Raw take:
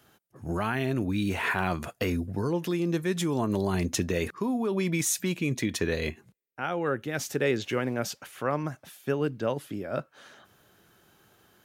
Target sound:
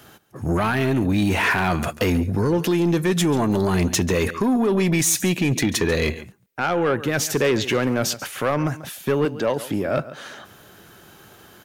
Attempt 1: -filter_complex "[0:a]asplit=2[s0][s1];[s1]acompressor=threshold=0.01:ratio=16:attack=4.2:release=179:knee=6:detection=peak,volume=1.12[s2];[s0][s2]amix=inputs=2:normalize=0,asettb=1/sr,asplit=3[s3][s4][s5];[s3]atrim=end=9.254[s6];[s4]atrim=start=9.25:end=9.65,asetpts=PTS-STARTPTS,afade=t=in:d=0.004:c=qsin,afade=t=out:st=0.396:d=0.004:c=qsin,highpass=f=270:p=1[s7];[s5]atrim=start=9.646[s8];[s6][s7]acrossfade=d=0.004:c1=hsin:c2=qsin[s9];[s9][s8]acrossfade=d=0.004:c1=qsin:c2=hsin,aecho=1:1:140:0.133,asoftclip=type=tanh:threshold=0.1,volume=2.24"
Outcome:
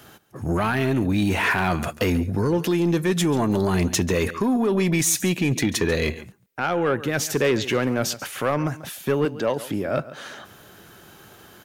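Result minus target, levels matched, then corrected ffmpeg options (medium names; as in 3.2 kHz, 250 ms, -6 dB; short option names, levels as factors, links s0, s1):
compression: peak gain reduction +9.5 dB
-filter_complex "[0:a]asplit=2[s0][s1];[s1]acompressor=threshold=0.0316:ratio=16:attack=4.2:release=179:knee=6:detection=peak,volume=1.12[s2];[s0][s2]amix=inputs=2:normalize=0,asettb=1/sr,asplit=3[s3][s4][s5];[s3]atrim=end=9.254[s6];[s4]atrim=start=9.25:end=9.65,asetpts=PTS-STARTPTS,afade=t=in:d=0.004:c=qsin,afade=t=out:st=0.396:d=0.004:c=qsin,highpass=f=270:p=1[s7];[s5]atrim=start=9.646[s8];[s6][s7]acrossfade=d=0.004:c1=hsin:c2=qsin[s9];[s9][s8]acrossfade=d=0.004:c1=qsin:c2=hsin,aecho=1:1:140:0.133,asoftclip=type=tanh:threshold=0.1,volume=2.24"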